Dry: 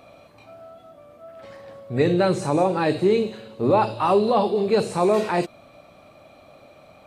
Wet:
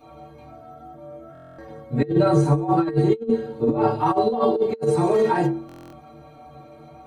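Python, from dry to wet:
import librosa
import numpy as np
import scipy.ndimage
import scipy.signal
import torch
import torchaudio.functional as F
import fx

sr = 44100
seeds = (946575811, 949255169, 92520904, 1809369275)

y = fx.stiff_resonator(x, sr, f0_hz=68.0, decay_s=0.56, stiffness=0.03)
y = fx.rev_fdn(y, sr, rt60_s=0.36, lf_ratio=0.95, hf_ratio=0.3, size_ms=20.0, drr_db=-8.5)
y = fx.over_compress(y, sr, threshold_db=-21.0, ratio=-0.5)
y = fx.low_shelf(y, sr, hz=230.0, db=7.5)
y = fx.buffer_glitch(y, sr, at_s=(1.33, 5.67), block=1024, repeats=10)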